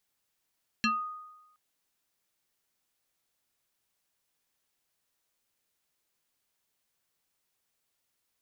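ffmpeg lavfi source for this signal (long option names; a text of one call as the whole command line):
ffmpeg -f lavfi -i "aevalsrc='0.0794*pow(10,-3*t/1.02)*sin(2*PI*1240*t+2.6*pow(10,-3*t/0.25)*sin(2*PI*1.18*1240*t))':duration=0.72:sample_rate=44100" out.wav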